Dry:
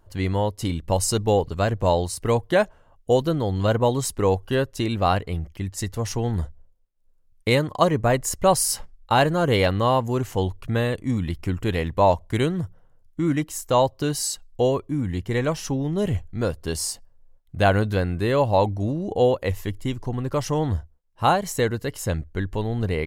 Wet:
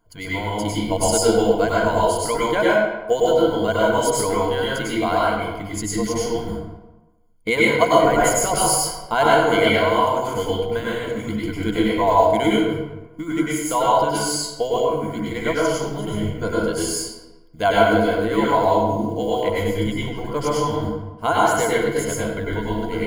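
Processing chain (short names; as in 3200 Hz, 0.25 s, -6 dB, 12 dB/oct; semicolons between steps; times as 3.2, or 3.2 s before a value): block floating point 7-bit; bell 82 Hz -10 dB 0.85 oct; harmonic-percussive split harmonic -11 dB; ripple EQ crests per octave 1.8, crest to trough 14 dB; reverb RT60 1.1 s, pre-delay 92 ms, DRR -6.5 dB; gain -2 dB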